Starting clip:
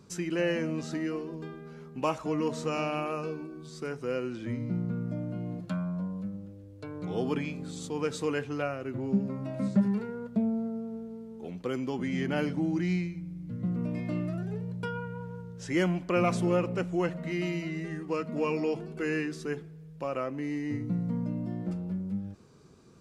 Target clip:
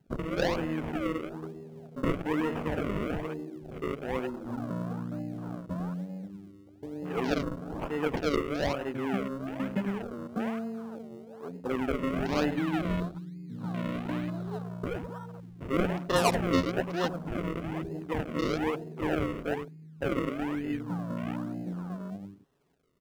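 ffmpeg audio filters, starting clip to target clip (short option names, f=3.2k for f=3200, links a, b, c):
-filter_complex "[0:a]highpass=200,highshelf=f=2.7k:g=10,bandreject=f=5.9k:w=10,aecho=1:1:7.2:0.51,aecho=1:1:101:0.299,acrusher=samples=37:mix=1:aa=0.000001:lfo=1:lforange=37:lforate=1.1,afwtdn=0.00891,asettb=1/sr,asplit=3[a][b][c];[a]atrim=end=12.504[d];[b]atrim=start=12.5:end=14.62,asetpts=PTS-STARTPTS,afade=t=in:d=0.004:c=qsin,afade=t=out:st=2.116:d=0.004:c=qsin,equalizer=f=3.9k:w=4:g=9[e];[c]atrim=start=14.616[f];[d][e]acrossfade=d=0.004:c1=hsin:c2=qsin[g];[g][f]acrossfade=d=0.004:c1=qsin:c2=hsin"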